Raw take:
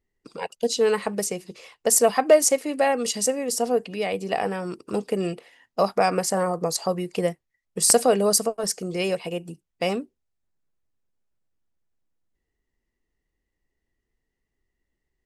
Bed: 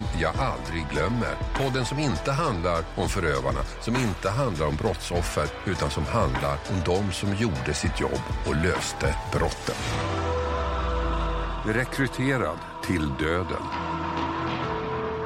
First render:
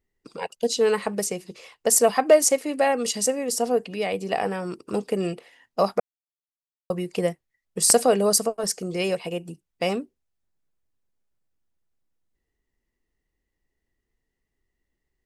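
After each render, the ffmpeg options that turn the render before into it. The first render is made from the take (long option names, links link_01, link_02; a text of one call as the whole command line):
ffmpeg -i in.wav -filter_complex "[0:a]asplit=3[link_01][link_02][link_03];[link_01]atrim=end=6,asetpts=PTS-STARTPTS,afade=type=out:start_time=5.996:duration=0.004:curve=hsin[link_04];[link_02]atrim=start=6:end=6.9,asetpts=PTS-STARTPTS,volume=0[link_05];[link_03]atrim=start=6.9,asetpts=PTS-STARTPTS,afade=type=in:duration=0.004:curve=hsin[link_06];[link_04][link_05][link_06]concat=n=3:v=0:a=1" out.wav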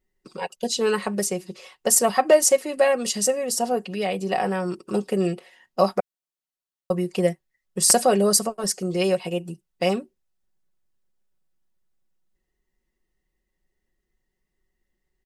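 ffmpeg -i in.wav -af "bandreject=frequency=2300:width=17,aecho=1:1:5.4:0.63" out.wav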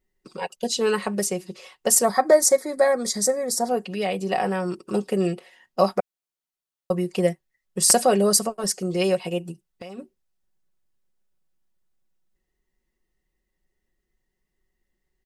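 ffmpeg -i in.wav -filter_complex "[0:a]asettb=1/sr,asplit=3[link_01][link_02][link_03];[link_01]atrim=end=2.044[link_04];[link_02]atrim=start=2.04:end=3.69,asetpts=PTS-STARTPTS,afade=type=in:duration=0.004:curve=qsin,afade=type=out:start_time=1.646:duration=0.004:curve=qsin,asuperstop=centerf=2800:order=4:qfactor=2.1[link_05];[link_03]atrim=start=3.686[link_06];[link_04][link_05]acrossfade=duration=0.004:curve1=hsin:curve2=qsin[link_07];[link_07][link_06]acrossfade=duration=0.004:curve1=qsin:curve2=hsin,asplit=3[link_08][link_09][link_10];[link_08]afade=type=out:start_time=9.51:duration=0.02[link_11];[link_09]acompressor=threshold=-34dB:ratio=16:attack=3.2:release=140:knee=1:detection=peak,afade=type=in:start_time=9.51:duration=0.02,afade=type=out:start_time=9.98:duration=0.02[link_12];[link_10]afade=type=in:start_time=9.98:duration=0.02[link_13];[link_11][link_12][link_13]amix=inputs=3:normalize=0" out.wav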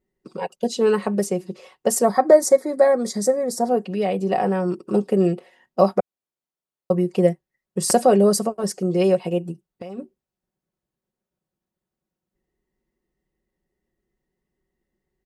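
ffmpeg -i in.wav -af "highpass=frequency=120:poles=1,tiltshelf=frequency=1100:gain=6.5" out.wav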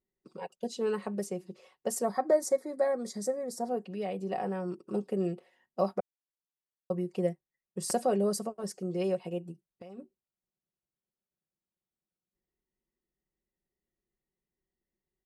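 ffmpeg -i in.wav -af "volume=-12.5dB" out.wav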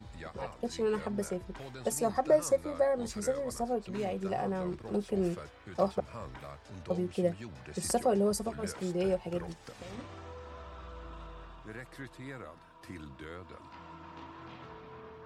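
ffmpeg -i in.wav -i bed.wav -filter_complex "[1:a]volume=-20dB[link_01];[0:a][link_01]amix=inputs=2:normalize=0" out.wav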